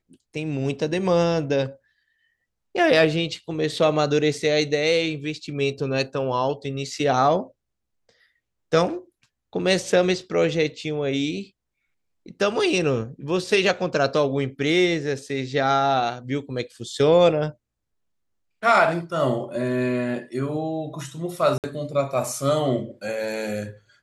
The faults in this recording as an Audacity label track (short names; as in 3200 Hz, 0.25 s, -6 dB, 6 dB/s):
21.580000	21.640000	gap 58 ms